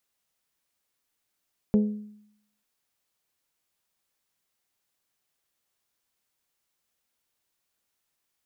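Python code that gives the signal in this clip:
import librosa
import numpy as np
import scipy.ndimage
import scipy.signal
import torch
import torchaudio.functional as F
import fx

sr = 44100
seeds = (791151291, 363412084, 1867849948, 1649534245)

y = fx.strike_glass(sr, length_s=0.89, level_db=-15.5, body='bell', hz=210.0, decay_s=0.74, tilt_db=8.5, modes=5)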